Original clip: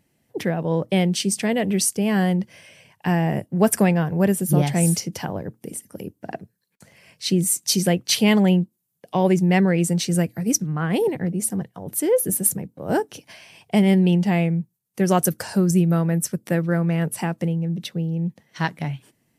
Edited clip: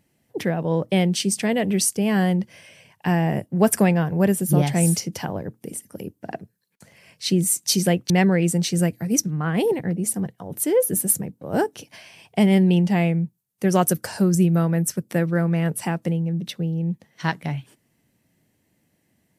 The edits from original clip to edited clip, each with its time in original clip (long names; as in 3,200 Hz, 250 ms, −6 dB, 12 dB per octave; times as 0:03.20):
0:08.10–0:09.46: remove